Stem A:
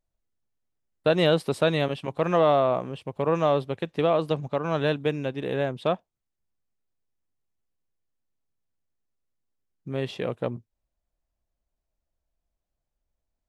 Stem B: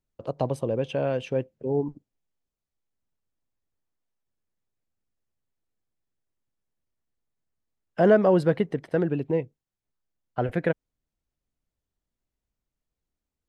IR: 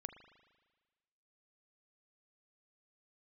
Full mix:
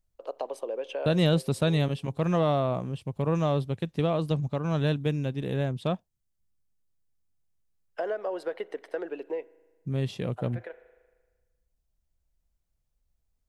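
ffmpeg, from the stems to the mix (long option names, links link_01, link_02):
-filter_complex "[0:a]bass=frequency=250:gain=13,treble=frequency=4000:gain=9,volume=-6.5dB,asplit=2[link_01][link_02];[1:a]highpass=frequency=400:width=0.5412,highpass=frequency=400:width=1.3066,acompressor=threshold=-26dB:ratio=6,volume=-4.5dB,asplit=2[link_03][link_04];[link_04]volume=-5.5dB[link_05];[link_02]apad=whole_len=594835[link_06];[link_03][link_06]sidechaincompress=threshold=-45dB:ratio=4:attack=16:release=1390[link_07];[2:a]atrim=start_sample=2205[link_08];[link_05][link_08]afir=irnorm=-1:irlink=0[link_09];[link_01][link_07][link_09]amix=inputs=3:normalize=0"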